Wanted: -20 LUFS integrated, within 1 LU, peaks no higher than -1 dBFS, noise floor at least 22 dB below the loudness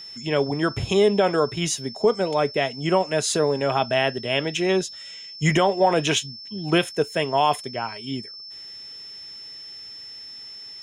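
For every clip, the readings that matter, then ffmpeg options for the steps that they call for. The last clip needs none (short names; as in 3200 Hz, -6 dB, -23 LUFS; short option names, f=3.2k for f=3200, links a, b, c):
steady tone 5300 Hz; tone level -37 dBFS; loudness -22.5 LUFS; peak -8.0 dBFS; loudness target -20.0 LUFS
-> -af "bandreject=f=5.3k:w=30"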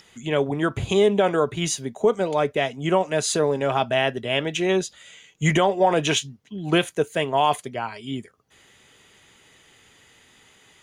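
steady tone none; loudness -22.5 LUFS; peak -8.0 dBFS; loudness target -20.0 LUFS
-> -af "volume=2.5dB"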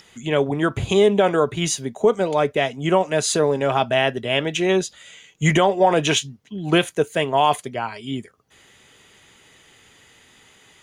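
loudness -20.0 LUFS; peak -5.5 dBFS; noise floor -54 dBFS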